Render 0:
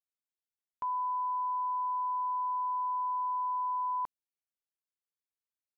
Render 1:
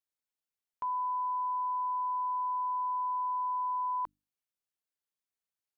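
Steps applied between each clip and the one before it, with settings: hum notches 50/100/150/200/250/300 Hz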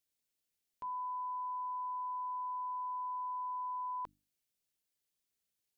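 peaking EQ 1.1 kHz -10 dB 1.6 oct; peak limiter -43 dBFS, peak gain reduction 8 dB; trim +7 dB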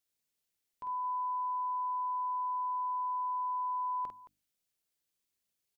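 multi-tap echo 49/220 ms -5/-14.5 dB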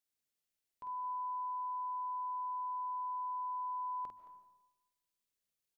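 algorithmic reverb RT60 1 s, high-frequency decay 0.5×, pre-delay 105 ms, DRR 9.5 dB; trim -5 dB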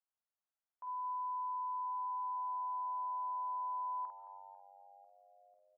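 Butterworth band-pass 970 Hz, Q 1.2; frequency-shifting echo 496 ms, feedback 54%, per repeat -96 Hz, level -17 dB

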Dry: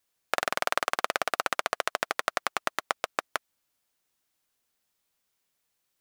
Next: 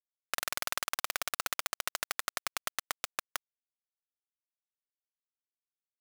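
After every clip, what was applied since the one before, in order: word length cut 6-bit, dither none; differentiator; overdrive pedal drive 13 dB, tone 6.5 kHz, clips at -10 dBFS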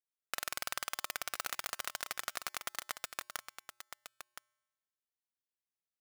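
feedback comb 120 Hz, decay 1.2 s, harmonics odd, mix 30%; delay 1018 ms -9.5 dB; trim -1.5 dB

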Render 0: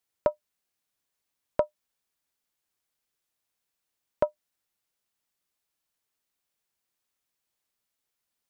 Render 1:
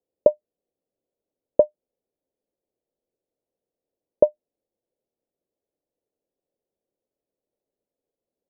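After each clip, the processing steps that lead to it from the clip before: FFT filter 120 Hz 0 dB, 530 Hz +14 dB, 1.4 kHz -23 dB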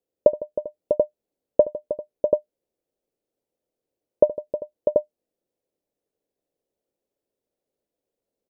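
multi-tap echo 72/155/314/395/647/735 ms -17/-17/-12/-19.5/-6.5/-4.5 dB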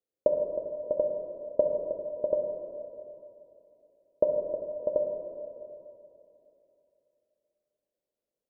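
plate-style reverb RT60 3 s, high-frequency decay 0.8×, DRR 1.5 dB; trim -8.5 dB

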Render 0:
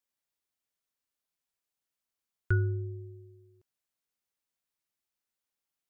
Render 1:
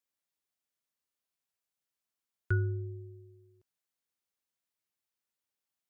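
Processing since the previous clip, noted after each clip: high-pass 56 Hz; trim -2 dB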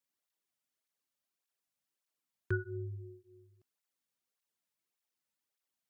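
cancelling through-zero flanger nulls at 1.7 Hz, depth 3 ms; trim +3 dB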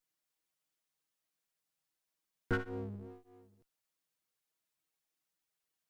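comb filter that takes the minimum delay 6.3 ms; trim +2.5 dB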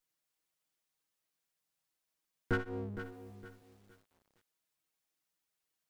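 bit-crushed delay 462 ms, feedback 35%, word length 10-bit, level -11 dB; trim +1 dB

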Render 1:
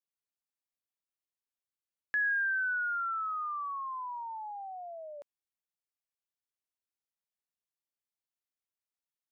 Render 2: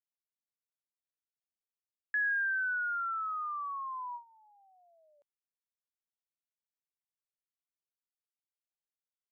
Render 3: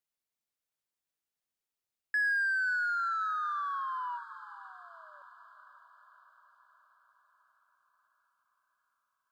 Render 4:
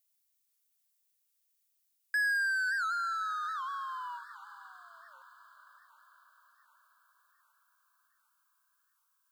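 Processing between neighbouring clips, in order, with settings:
gate with hold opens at -30 dBFS; trim -1 dB
in parallel at -4.5 dB: saturation -38 dBFS, distortion -10 dB; on the sum: echo that smears into a reverb 516 ms, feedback 62%, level -15.5 dB
tilt EQ +5 dB/octave; warped record 78 rpm, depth 160 cents; trim -4 dB

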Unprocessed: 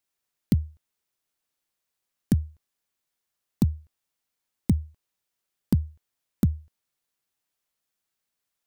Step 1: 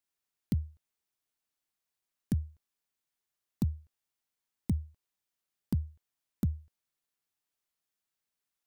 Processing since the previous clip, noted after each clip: peak limiter -14 dBFS, peak gain reduction 4.5 dB; band-stop 530 Hz, Q 12; trim -5.5 dB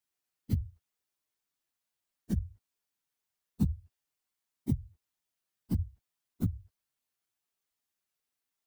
phase randomisation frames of 50 ms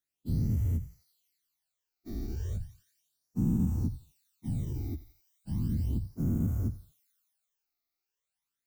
every event in the spectrogram widened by 480 ms; thinning echo 87 ms, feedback 78%, high-pass 1.1 kHz, level -12.5 dB; phase shifter stages 12, 0.35 Hz, lowest notch 160–4200 Hz; trim -6.5 dB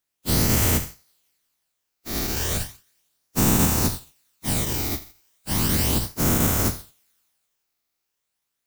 spectral contrast reduction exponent 0.42; trim +8.5 dB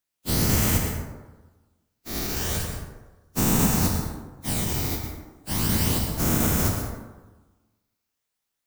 plate-style reverb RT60 1.2 s, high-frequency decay 0.4×, pre-delay 95 ms, DRR 4 dB; trim -3 dB

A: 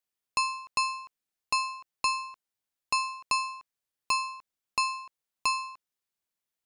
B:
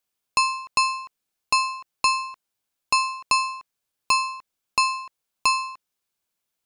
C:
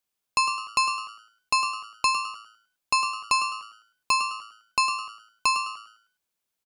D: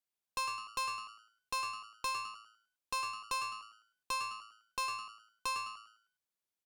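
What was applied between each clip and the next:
band-stop 1.9 kHz, Q 12; trim +7 dB
frequency-shifting echo 104 ms, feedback 32%, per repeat +110 Hz, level -10 dB; trim -2.5 dB
valve stage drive 21 dB, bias 0.3; trim -9 dB

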